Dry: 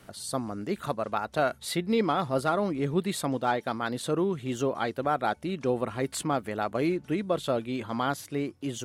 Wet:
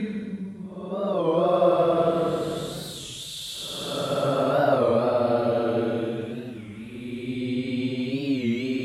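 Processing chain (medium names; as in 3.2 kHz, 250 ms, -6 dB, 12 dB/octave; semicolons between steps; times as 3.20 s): Paulstretch 16×, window 0.10 s, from 7.22 s; two-band feedback delay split 480 Hz, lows 118 ms, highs 172 ms, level -12.5 dB; warped record 33 1/3 rpm, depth 160 cents; trim +3.5 dB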